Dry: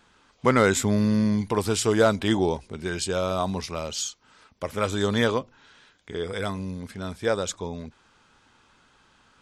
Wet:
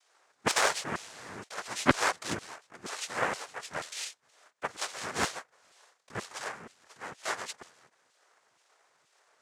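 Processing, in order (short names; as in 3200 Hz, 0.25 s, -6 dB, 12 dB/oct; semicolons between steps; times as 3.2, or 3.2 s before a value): half-wave gain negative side -7 dB; dynamic EQ 2500 Hz, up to +5 dB, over -45 dBFS, Q 1.4; LFO high-pass saw down 2.1 Hz 400–2400 Hz; noise vocoder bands 3; added harmonics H 3 -13 dB, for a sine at -2.5 dBFS; gain +1.5 dB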